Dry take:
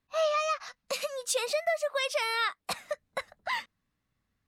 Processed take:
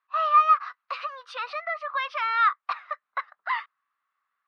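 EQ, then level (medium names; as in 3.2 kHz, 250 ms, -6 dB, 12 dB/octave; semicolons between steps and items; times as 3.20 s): boxcar filter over 6 samples; resonant high-pass 1.2 kHz, resonance Q 4.9; distance through air 150 m; +1.0 dB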